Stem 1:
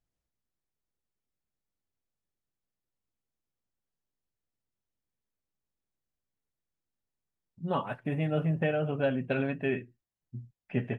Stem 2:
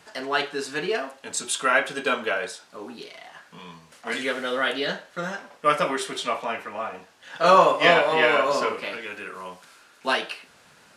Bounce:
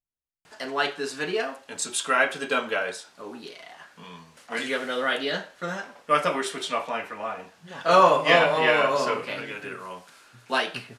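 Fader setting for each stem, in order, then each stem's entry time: -13.0 dB, -1.0 dB; 0.00 s, 0.45 s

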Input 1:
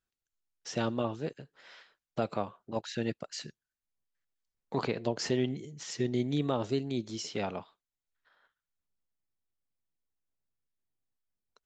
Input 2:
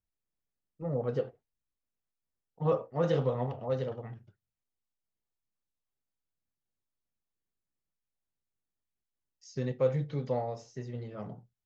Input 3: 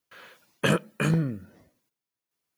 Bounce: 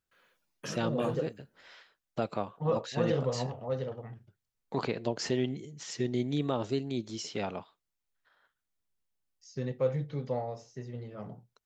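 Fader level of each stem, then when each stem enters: -0.5 dB, -1.5 dB, -18.5 dB; 0.00 s, 0.00 s, 0.00 s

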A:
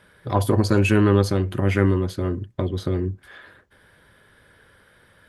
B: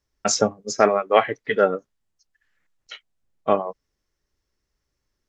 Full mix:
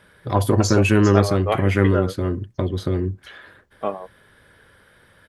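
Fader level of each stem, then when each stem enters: +1.5 dB, -6.0 dB; 0.00 s, 0.35 s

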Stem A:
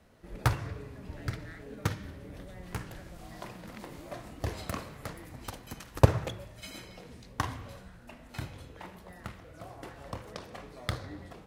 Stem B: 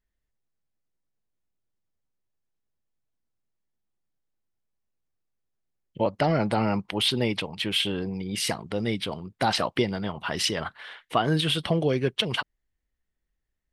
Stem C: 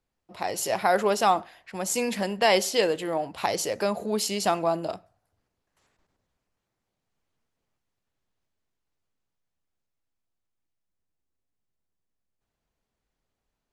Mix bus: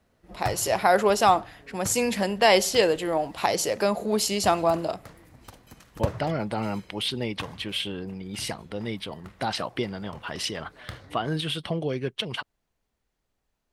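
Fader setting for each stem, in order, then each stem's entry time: -6.0 dB, -4.5 dB, +2.5 dB; 0.00 s, 0.00 s, 0.00 s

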